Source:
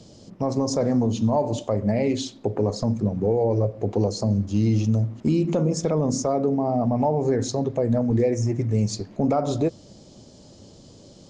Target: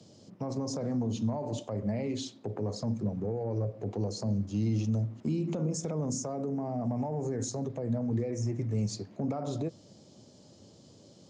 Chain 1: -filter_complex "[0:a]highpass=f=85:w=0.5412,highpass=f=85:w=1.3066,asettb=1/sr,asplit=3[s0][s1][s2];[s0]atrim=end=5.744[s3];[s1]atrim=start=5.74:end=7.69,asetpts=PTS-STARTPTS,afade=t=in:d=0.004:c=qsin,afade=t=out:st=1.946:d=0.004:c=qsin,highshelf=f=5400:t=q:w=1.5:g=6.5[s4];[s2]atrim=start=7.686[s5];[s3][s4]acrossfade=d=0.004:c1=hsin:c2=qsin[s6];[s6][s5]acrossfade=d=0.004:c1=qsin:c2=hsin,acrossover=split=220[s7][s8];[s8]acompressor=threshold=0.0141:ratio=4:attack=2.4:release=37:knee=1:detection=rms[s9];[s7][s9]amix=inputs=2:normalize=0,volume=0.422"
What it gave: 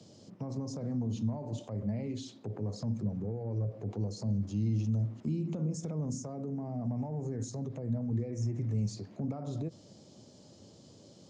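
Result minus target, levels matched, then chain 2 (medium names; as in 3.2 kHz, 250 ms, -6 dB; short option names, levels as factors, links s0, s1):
compression: peak gain reduction +8.5 dB
-filter_complex "[0:a]highpass=f=85:w=0.5412,highpass=f=85:w=1.3066,asettb=1/sr,asplit=3[s0][s1][s2];[s0]atrim=end=5.744[s3];[s1]atrim=start=5.74:end=7.69,asetpts=PTS-STARTPTS,afade=t=in:d=0.004:c=qsin,afade=t=out:st=1.946:d=0.004:c=qsin,highshelf=f=5400:t=q:w=1.5:g=6.5[s4];[s2]atrim=start=7.686[s5];[s3][s4]acrossfade=d=0.004:c1=hsin:c2=qsin[s6];[s6][s5]acrossfade=d=0.004:c1=qsin:c2=hsin,acrossover=split=220[s7][s8];[s8]acompressor=threshold=0.0501:ratio=4:attack=2.4:release=37:knee=1:detection=rms[s9];[s7][s9]amix=inputs=2:normalize=0,volume=0.422"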